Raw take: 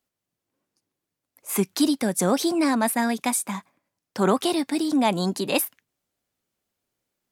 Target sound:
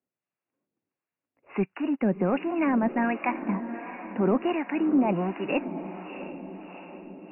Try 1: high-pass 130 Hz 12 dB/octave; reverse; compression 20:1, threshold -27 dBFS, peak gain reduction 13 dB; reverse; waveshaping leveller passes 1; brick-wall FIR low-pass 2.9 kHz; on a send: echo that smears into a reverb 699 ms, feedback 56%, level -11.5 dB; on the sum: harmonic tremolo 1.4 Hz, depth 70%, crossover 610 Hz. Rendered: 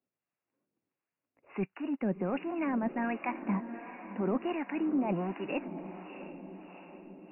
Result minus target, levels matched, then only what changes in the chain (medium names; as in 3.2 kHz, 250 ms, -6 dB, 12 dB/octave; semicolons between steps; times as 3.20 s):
compression: peak gain reduction +8 dB
change: compression 20:1, threshold -18.5 dBFS, peak gain reduction 5 dB